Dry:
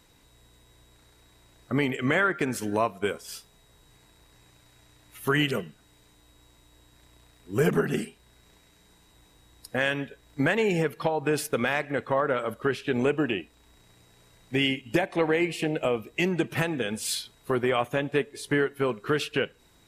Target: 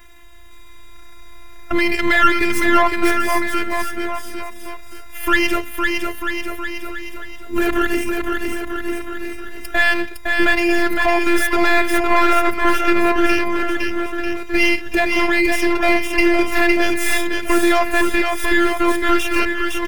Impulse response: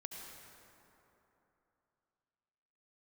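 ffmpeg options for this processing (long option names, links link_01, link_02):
-filter_complex "[0:a]afftfilt=real='hypot(re,im)*cos(PI*b)':imag='0':win_size=512:overlap=0.75,apsyclip=22.5dB,asuperstop=centerf=4200:order=20:qfactor=6.5,acrossover=split=230|1100[link_01][link_02][link_03];[link_03]aeval=exprs='max(val(0),0)':channel_layout=same[link_04];[link_01][link_02][link_04]amix=inputs=3:normalize=0,equalizer=frequency=125:width_type=o:width=1:gain=-8,equalizer=frequency=250:width_type=o:width=1:gain=-9,equalizer=frequency=500:width_type=o:width=1:gain=-11,equalizer=frequency=1000:width_type=o:width=1:gain=-3,equalizer=frequency=2000:width_type=o:width=1:gain=4,equalizer=frequency=4000:width_type=o:width=1:gain=-6,equalizer=frequency=8000:width_type=o:width=1:gain=-5,asplit=2[link_05][link_06];[link_06]aecho=0:1:510|943.5|1312|1625|1891:0.631|0.398|0.251|0.158|0.1[link_07];[link_05][link_07]amix=inputs=2:normalize=0"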